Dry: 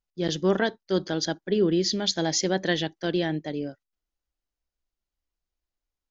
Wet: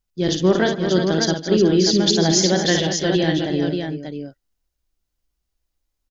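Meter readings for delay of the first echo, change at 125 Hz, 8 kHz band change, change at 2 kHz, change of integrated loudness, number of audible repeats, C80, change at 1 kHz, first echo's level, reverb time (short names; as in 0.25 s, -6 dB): 55 ms, +10.0 dB, n/a, +6.0 dB, +8.0 dB, 5, none, +6.0 dB, -6.5 dB, none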